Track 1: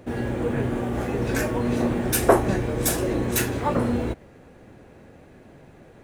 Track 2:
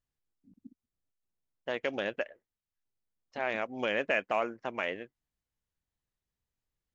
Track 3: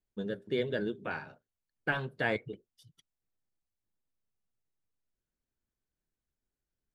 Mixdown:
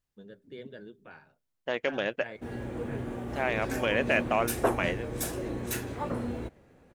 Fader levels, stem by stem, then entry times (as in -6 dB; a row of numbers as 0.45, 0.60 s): -10.0, +3.0, -13.0 dB; 2.35, 0.00, 0.00 s